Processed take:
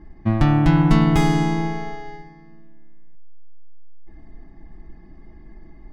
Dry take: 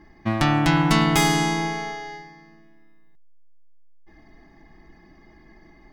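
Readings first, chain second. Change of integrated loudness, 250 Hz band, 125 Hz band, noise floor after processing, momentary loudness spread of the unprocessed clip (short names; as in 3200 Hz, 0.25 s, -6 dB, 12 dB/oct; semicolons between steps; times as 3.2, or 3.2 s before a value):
+2.5 dB, +3.5 dB, +5.5 dB, -44 dBFS, 14 LU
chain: tilt -3 dB/oct; gain -2.5 dB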